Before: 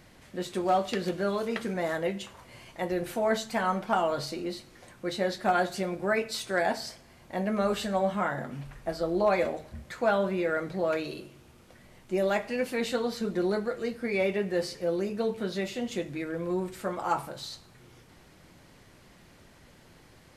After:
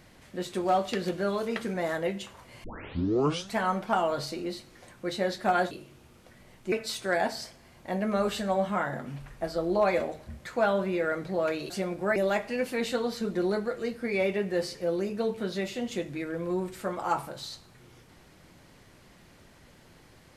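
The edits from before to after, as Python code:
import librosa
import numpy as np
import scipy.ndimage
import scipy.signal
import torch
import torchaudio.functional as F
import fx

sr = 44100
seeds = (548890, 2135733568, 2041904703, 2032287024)

y = fx.edit(x, sr, fx.tape_start(start_s=2.64, length_s=0.94),
    fx.swap(start_s=5.71, length_s=0.46, other_s=11.15, other_length_s=1.01), tone=tone)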